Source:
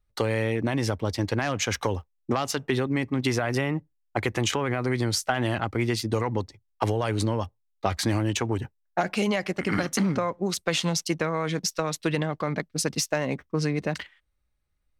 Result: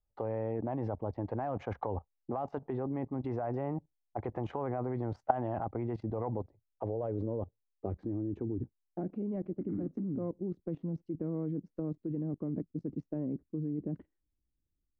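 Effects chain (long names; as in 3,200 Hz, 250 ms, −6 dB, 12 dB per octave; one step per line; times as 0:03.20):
low-pass filter sweep 780 Hz → 310 Hz, 0:06.03–0:08.59
output level in coarse steps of 16 dB
level −2.5 dB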